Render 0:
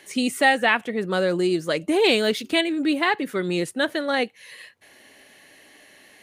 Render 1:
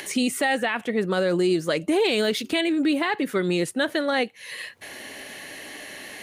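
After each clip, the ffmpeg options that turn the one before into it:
-filter_complex "[0:a]asplit=2[a][b];[b]acompressor=mode=upward:threshold=-24dB:ratio=2.5,volume=2dB[c];[a][c]amix=inputs=2:normalize=0,alimiter=limit=-9dB:level=0:latency=1:release=40,volume=-5dB"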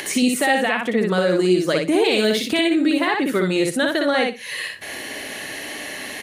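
-filter_complex "[0:a]aecho=1:1:60|120|180:0.708|0.12|0.0205,asplit=2[a][b];[b]acompressor=threshold=-28dB:ratio=6,volume=0dB[c];[a][c]amix=inputs=2:normalize=0"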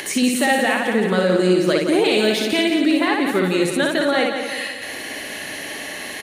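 -af "aecho=1:1:173|346|519|692|865|1038:0.447|0.228|0.116|0.0593|0.0302|0.0154"

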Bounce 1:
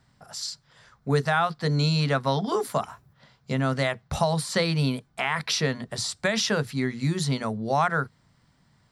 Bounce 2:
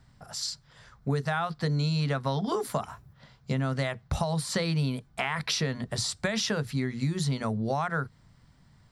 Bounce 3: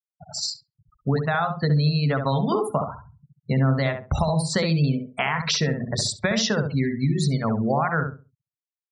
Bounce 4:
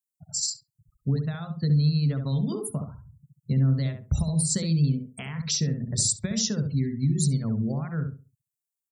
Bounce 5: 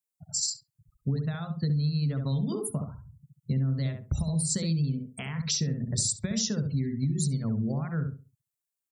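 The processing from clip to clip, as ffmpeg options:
-af "lowshelf=f=96:g=12,acompressor=threshold=-25dB:ratio=6"
-filter_complex "[0:a]afftfilt=real='re*gte(hypot(re,im),0.02)':imag='im*gte(hypot(re,im),0.02)':win_size=1024:overlap=0.75,asplit=2[a][b];[b]adelay=67,lowpass=f=1.1k:p=1,volume=-4.5dB,asplit=2[c][d];[d]adelay=67,lowpass=f=1.1k:p=1,volume=0.27,asplit=2[e][f];[f]adelay=67,lowpass=f=1.1k:p=1,volume=0.27,asplit=2[g][h];[h]adelay=67,lowpass=f=1.1k:p=1,volume=0.27[i];[c][e][g][i]amix=inputs=4:normalize=0[j];[a][j]amix=inputs=2:normalize=0,volume=5.5dB"
-af "firequalizer=gain_entry='entry(120,0);entry(770,-21);entry(7500,8)':delay=0.05:min_phase=1"
-af "acompressor=threshold=-24dB:ratio=6"

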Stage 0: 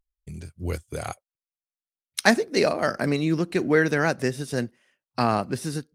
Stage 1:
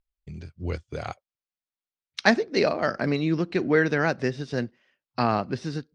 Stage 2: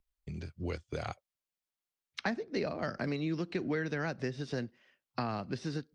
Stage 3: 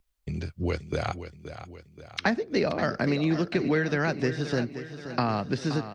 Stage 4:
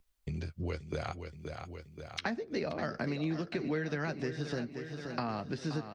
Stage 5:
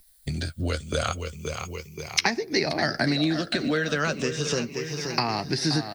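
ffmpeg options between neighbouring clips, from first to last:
-af "lowpass=f=5.2k:w=0.5412,lowpass=f=5.2k:w=1.3066,volume=-1dB"
-filter_complex "[0:a]acrossover=split=220|2500[a][b][c];[a]acompressor=threshold=-40dB:ratio=4[d];[b]acompressor=threshold=-36dB:ratio=4[e];[c]acompressor=threshold=-49dB:ratio=4[f];[d][e][f]amix=inputs=3:normalize=0"
-af "aecho=1:1:526|1052|1578|2104|2630:0.266|0.13|0.0639|0.0313|0.0153,volume=8.5dB"
-filter_complex "[0:a]acompressor=threshold=-40dB:ratio=2,asplit=2[a][b];[b]adelay=13,volume=-11.5dB[c];[a][c]amix=inputs=2:normalize=0"
-af "afftfilt=real='re*pow(10,9/40*sin(2*PI*(0.78*log(max(b,1)*sr/1024/100)/log(2)-(-0.34)*(pts-256)/sr)))':imag='im*pow(10,9/40*sin(2*PI*(0.78*log(max(b,1)*sr/1024/100)/log(2)-(-0.34)*(pts-256)/sr)))':win_size=1024:overlap=0.75,crystalizer=i=4.5:c=0,volume=7.5dB"

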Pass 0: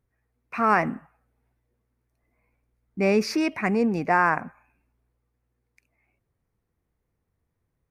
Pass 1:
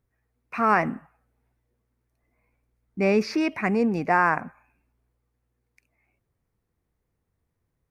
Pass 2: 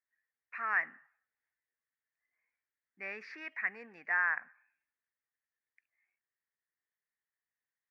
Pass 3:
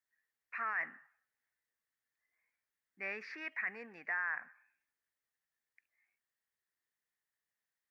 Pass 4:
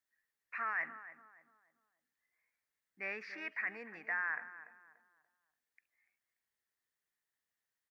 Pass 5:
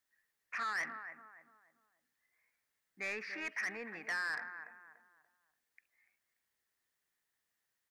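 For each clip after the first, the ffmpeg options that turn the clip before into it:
-filter_complex "[0:a]acrossover=split=5200[a][b];[b]acompressor=threshold=-50dB:ratio=4:attack=1:release=60[c];[a][c]amix=inputs=2:normalize=0"
-af "bandpass=f=1.8k:t=q:w=6.5:csg=0"
-af "alimiter=level_in=4.5dB:limit=-24dB:level=0:latency=1:release=16,volume=-4.5dB,volume=1dB"
-filter_complex "[0:a]asplit=2[a][b];[b]adelay=290,lowpass=f=1.4k:p=1,volume=-12dB,asplit=2[c][d];[d]adelay=290,lowpass=f=1.4k:p=1,volume=0.41,asplit=2[e][f];[f]adelay=290,lowpass=f=1.4k:p=1,volume=0.41,asplit=2[g][h];[h]adelay=290,lowpass=f=1.4k:p=1,volume=0.41[i];[a][c][e][g][i]amix=inputs=5:normalize=0"
-af "asoftclip=type=tanh:threshold=-37dB,volume=4.5dB"

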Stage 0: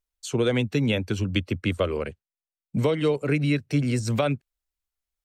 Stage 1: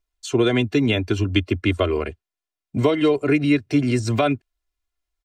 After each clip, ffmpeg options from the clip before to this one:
-af "highshelf=f=8k:g=-11,aecho=1:1:2.9:0.72,volume=4dB"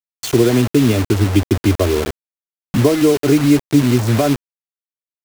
-af "tiltshelf=f=920:g=7.5,acompressor=mode=upward:threshold=-14dB:ratio=2.5,acrusher=bits=3:mix=0:aa=0.000001"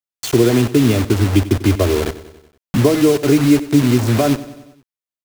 -af "aecho=1:1:94|188|282|376|470:0.15|0.0868|0.0503|0.0292|0.0169"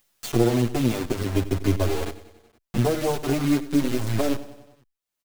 -filter_complex "[0:a]aeval=exprs='if(lt(val(0),0),0.251*val(0),val(0))':c=same,acompressor=mode=upward:threshold=-35dB:ratio=2.5,asplit=2[a][b];[b]adelay=6.7,afreqshift=0.44[c];[a][c]amix=inputs=2:normalize=1,volume=-3dB"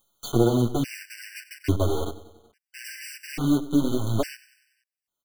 -af "afftfilt=real='re*gt(sin(2*PI*0.59*pts/sr)*(1-2*mod(floor(b*sr/1024/1500),2)),0)':imag='im*gt(sin(2*PI*0.59*pts/sr)*(1-2*mod(floor(b*sr/1024/1500),2)),0)':win_size=1024:overlap=0.75"

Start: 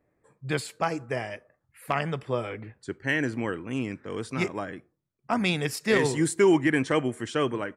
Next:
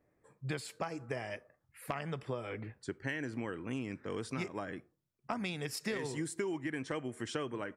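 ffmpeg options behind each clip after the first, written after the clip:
-af "acompressor=threshold=-31dB:ratio=12,equalizer=f=5.3k:w=6.9:g=3,volume=-2.5dB"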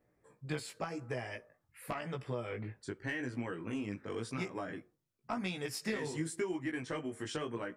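-af "asoftclip=type=tanh:threshold=-22.5dB,flanger=delay=16:depth=3.6:speed=0.9,volume=3dB"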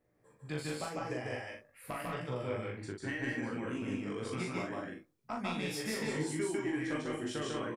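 -filter_complex "[0:a]asplit=2[a][b];[b]adelay=40,volume=-4dB[c];[a][c]amix=inputs=2:normalize=0,aecho=1:1:148.7|192.4:0.891|0.562,volume=-2.5dB"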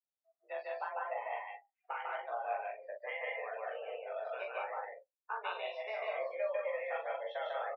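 -af "afftdn=nr=34:nf=-46,highshelf=f=2.7k:g=-11,highpass=f=350:t=q:w=0.5412,highpass=f=350:t=q:w=1.307,lowpass=f=3.6k:t=q:w=0.5176,lowpass=f=3.6k:t=q:w=0.7071,lowpass=f=3.6k:t=q:w=1.932,afreqshift=210,volume=2dB"

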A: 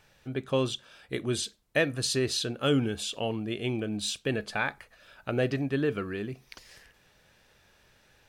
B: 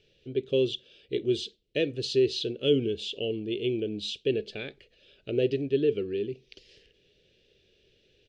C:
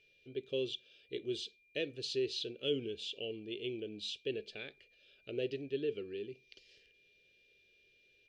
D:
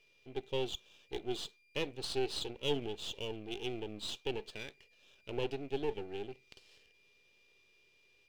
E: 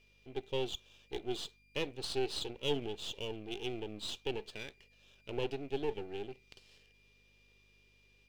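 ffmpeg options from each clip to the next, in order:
-af "firequalizer=gain_entry='entry(250,0);entry(400,12);entry(890,-24);entry(2900,7);entry(11000,-26)':delay=0.05:min_phase=1,volume=-4dB"
-af "lowshelf=f=470:g=-8.5,aeval=exprs='val(0)+0.000891*sin(2*PI*2400*n/s)':c=same,volume=-6.5dB"
-af "aeval=exprs='if(lt(val(0),0),0.251*val(0),val(0))':c=same,volume=3.5dB"
-af "aeval=exprs='val(0)+0.000316*(sin(2*PI*50*n/s)+sin(2*PI*2*50*n/s)/2+sin(2*PI*3*50*n/s)/3+sin(2*PI*4*50*n/s)/4+sin(2*PI*5*50*n/s)/5)':c=same"

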